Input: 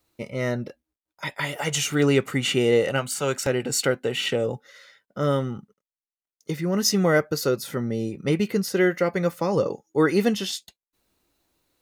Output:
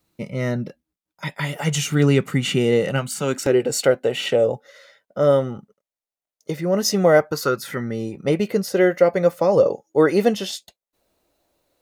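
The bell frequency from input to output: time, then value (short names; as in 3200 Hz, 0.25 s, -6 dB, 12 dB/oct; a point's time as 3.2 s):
bell +11 dB 0.8 oct
3.15 s 170 Hz
3.76 s 610 Hz
7.07 s 610 Hz
7.77 s 2100 Hz
8.31 s 600 Hz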